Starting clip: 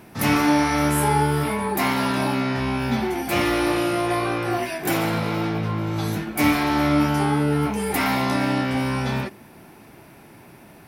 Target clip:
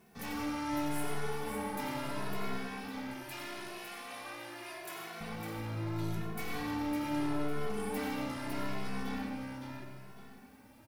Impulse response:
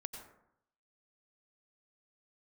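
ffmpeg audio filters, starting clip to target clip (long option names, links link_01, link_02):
-filter_complex "[0:a]acrusher=bits=8:mix=0:aa=0.000001,aeval=exprs='(tanh(15.8*val(0)+0.65)-tanh(0.65))/15.8':channel_layout=same,asettb=1/sr,asplit=3[link_01][link_02][link_03];[link_01]atrim=end=2.574[link_04];[link_02]atrim=start=2.57:end=5.21,asetpts=PTS-STARTPTS,afade=type=in:duration=0.004:curve=qsin,afade=type=out:start_time=2.636:duration=0.004:curve=qsin,highpass=frequency=1200:poles=1[link_05];[link_03]atrim=start=5.206[link_06];[link_04][link_05]acrossfade=duration=0.004:curve1=hsin:curve2=qsin[link_07];[link_07][link_06]acrossfade=duration=0.004:curve1=qsin:curve2=hsin,aecho=1:1:555|1110|1665|2220:0.562|0.186|0.0612|0.0202[link_08];[1:a]atrim=start_sample=2205[link_09];[link_08][link_09]afir=irnorm=-1:irlink=0,asplit=2[link_10][link_11];[link_11]adelay=2.3,afreqshift=0.78[link_12];[link_10][link_12]amix=inputs=2:normalize=1,volume=-6dB"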